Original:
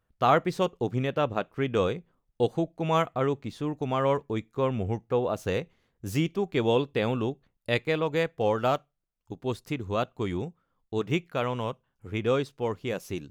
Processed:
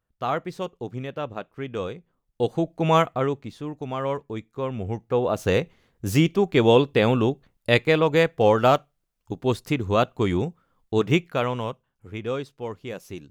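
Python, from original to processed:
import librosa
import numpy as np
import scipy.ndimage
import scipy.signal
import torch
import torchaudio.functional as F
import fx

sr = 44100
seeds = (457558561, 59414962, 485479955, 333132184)

y = fx.gain(x, sr, db=fx.line((1.97, -4.5), (2.88, 7.0), (3.59, -2.0), (4.68, -2.0), (5.54, 7.5), (11.08, 7.5), (12.18, -3.0)))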